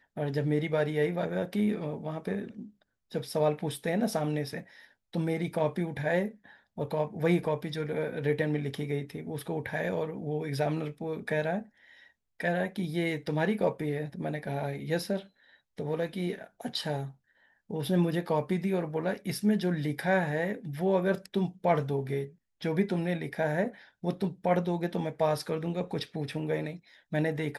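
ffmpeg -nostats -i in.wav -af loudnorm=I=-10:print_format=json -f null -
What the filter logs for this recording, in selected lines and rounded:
"input_i" : "-31.4",
"input_tp" : "-13.1",
"input_lra" : "3.8",
"input_thresh" : "-41.8",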